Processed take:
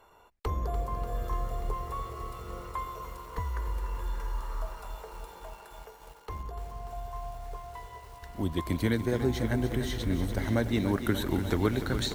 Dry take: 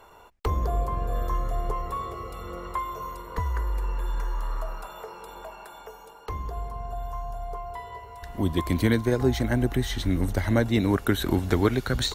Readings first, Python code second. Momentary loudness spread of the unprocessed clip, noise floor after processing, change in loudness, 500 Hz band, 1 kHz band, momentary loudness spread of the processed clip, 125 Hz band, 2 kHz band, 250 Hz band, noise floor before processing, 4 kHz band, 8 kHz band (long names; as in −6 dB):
18 LU, −53 dBFS, −5.0 dB, −5.0 dB, −5.0 dB, 17 LU, −5.0 dB, −5.0 dB, −4.5 dB, −48 dBFS, −5.0 dB, −4.5 dB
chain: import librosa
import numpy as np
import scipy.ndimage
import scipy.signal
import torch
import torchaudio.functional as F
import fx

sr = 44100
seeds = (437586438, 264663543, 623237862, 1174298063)

p1 = np.sign(x) * np.maximum(np.abs(x) - 10.0 ** (-42.0 / 20.0), 0.0)
p2 = x + (p1 * 10.0 ** (-11.0 / 20.0))
p3 = fx.echo_crushed(p2, sr, ms=293, feedback_pct=80, bits=7, wet_db=-10)
y = p3 * 10.0 ** (-7.5 / 20.0)